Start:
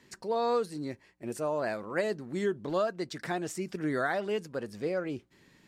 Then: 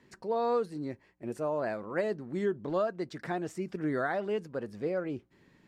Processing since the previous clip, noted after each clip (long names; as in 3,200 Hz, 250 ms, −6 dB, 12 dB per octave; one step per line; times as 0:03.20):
high-shelf EQ 2,900 Hz −11.5 dB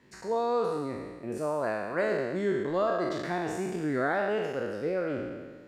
peak hold with a decay on every bin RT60 1.52 s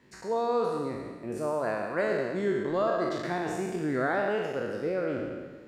convolution reverb RT60 0.30 s, pre-delay 118 ms, DRR 10.5 dB